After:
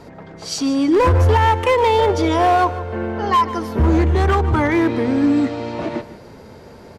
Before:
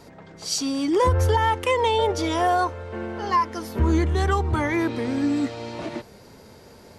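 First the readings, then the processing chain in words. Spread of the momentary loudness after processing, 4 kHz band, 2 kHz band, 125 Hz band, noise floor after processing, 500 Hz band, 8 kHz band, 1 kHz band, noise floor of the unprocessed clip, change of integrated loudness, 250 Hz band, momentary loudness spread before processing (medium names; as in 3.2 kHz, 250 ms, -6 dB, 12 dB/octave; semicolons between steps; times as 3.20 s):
11 LU, +2.0 dB, +5.0 dB, +6.5 dB, -41 dBFS, +6.5 dB, -1.0 dB, +6.0 dB, -48 dBFS, +6.0 dB, +7.0 dB, 12 LU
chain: treble shelf 3.8 kHz -11.5 dB; hard clipper -18 dBFS, distortion -15 dB; on a send: feedback delay 150 ms, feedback 34%, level -15.5 dB; on the sum: trim +7.5 dB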